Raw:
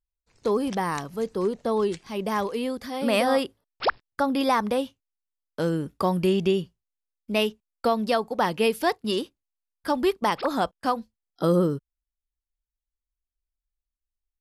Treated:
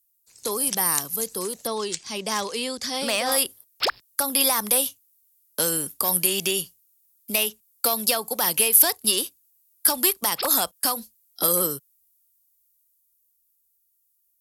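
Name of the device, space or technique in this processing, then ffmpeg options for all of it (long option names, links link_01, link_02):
FM broadcast chain: -filter_complex "[0:a]asettb=1/sr,asplit=3[link_01][link_02][link_03];[link_01]atrim=end=1.674[link_04];[link_02]atrim=start=1.67:end=3.32,asetpts=PTS-STARTPTS,afade=type=in:duration=0.004:curve=qsin,afade=type=out:start_time=1.646:duration=0.004:curve=qsin,lowpass=frequency=7200:width=0.5412,lowpass=frequency=7200:width=1.3066[link_05];[link_03]atrim=start=3.316[link_06];[link_04][link_05]acrossfade=duration=0.004:curve1=hsin:curve2=qsin[link_07];[link_07][link_06]acrossfade=duration=0.004:curve1=qsin:curve2=hsin,highpass=frequency=71:poles=1,dynaudnorm=framelen=240:gausssize=21:maxgain=5dB,acrossover=split=130|480|3000[link_08][link_09][link_10][link_11];[link_08]acompressor=threshold=-49dB:ratio=4[link_12];[link_09]acompressor=threshold=-31dB:ratio=4[link_13];[link_10]acompressor=threshold=-19dB:ratio=4[link_14];[link_11]acompressor=threshold=-36dB:ratio=4[link_15];[link_12][link_13][link_14][link_15]amix=inputs=4:normalize=0,aemphasis=mode=production:type=75fm,alimiter=limit=-13dB:level=0:latency=1:release=138,asoftclip=type=hard:threshold=-16.5dB,lowpass=frequency=15000:width=0.5412,lowpass=frequency=15000:width=1.3066,aemphasis=mode=production:type=75fm,volume=-2dB"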